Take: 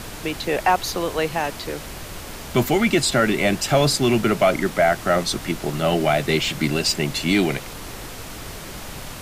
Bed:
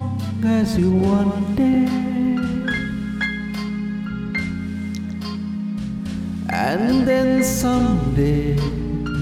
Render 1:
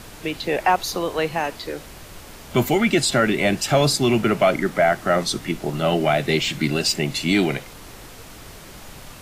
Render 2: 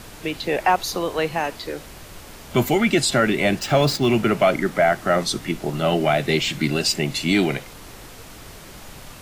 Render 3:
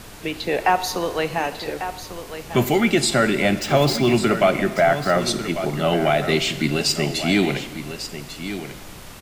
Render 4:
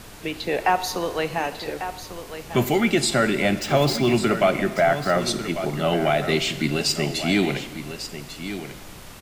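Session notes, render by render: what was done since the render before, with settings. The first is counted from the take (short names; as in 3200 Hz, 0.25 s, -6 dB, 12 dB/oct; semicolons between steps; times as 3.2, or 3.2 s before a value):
noise print and reduce 6 dB
3.59–4.1 median filter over 5 samples
echo 1.146 s -11 dB; non-linear reverb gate 0.5 s falling, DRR 12 dB
gain -2 dB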